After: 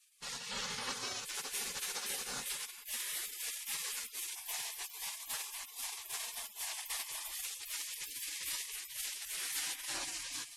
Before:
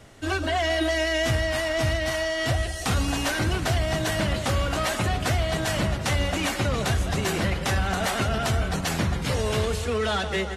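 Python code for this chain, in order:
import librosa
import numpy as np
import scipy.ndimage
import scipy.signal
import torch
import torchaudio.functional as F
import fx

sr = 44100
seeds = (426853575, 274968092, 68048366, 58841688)

y = fx.highpass(x, sr, hz=140.0, slope=6)
y = fx.rev_freeverb(y, sr, rt60_s=1.0, hf_ratio=0.5, predelay_ms=85, drr_db=7.5)
y = fx.rider(y, sr, range_db=10, speed_s=2.0)
y = fx.high_shelf(y, sr, hz=7300.0, db=fx.steps((0.0, -10.0), (1.34, 3.5)))
y = fx.spec_box(y, sr, start_s=4.35, length_s=2.98, low_hz=590.0, high_hz=1200.0, gain_db=-12)
y = fx.band_shelf(y, sr, hz=2500.0, db=-8.5, octaves=1.2)
y = fx.spec_gate(y, sr, threshold_db=-30, keep='weak')
y = y * librosa.db_to_amplitude(3.5)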